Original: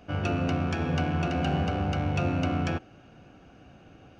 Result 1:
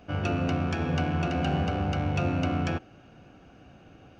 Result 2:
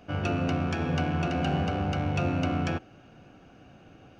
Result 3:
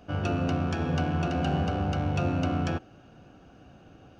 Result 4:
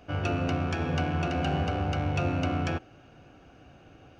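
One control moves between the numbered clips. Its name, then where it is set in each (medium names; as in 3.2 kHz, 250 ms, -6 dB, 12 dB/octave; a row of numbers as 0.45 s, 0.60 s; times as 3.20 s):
peaking EQ, frequency: 14 kHz, 63 Hz, 2.2 kHz, 200 Hz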